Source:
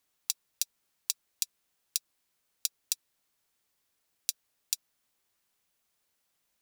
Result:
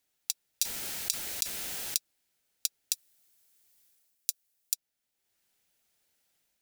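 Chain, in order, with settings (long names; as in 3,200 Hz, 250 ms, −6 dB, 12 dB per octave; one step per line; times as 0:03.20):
0:02.93–0:04.74: high-shelf EQ 5,300 Hz +11.5 dB
automatic gain control gain up to 4 dB
parametric band 1,100 Hz −10.5 dB 0.29 octaves
0:00.62–0:01.96: envelope flattener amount 100%
level −1 dB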